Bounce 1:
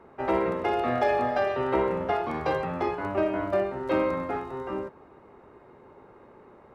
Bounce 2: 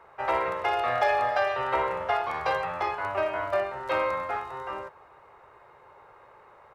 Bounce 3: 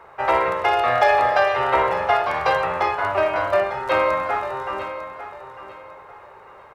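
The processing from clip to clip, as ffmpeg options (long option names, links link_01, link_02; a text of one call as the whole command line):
ffmpeg -i in.wav -af "firequalizer=gain_entry='entry(120,0);entry(230,-14);entry(510,4);entry(1000,10)':delay=0.05:min_phase=1,volume=-6dB" out.wav
ffmpeg -i in.wav -af "aecho=1:1:899|1798|2697:0.251|0.0678|0.0183,volume=7.5dB" out.wav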